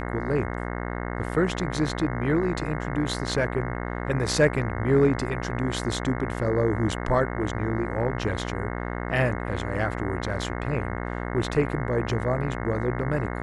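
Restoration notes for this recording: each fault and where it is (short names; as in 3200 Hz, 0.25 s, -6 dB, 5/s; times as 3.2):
buzz 60 Hz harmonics 36 -31 dBFS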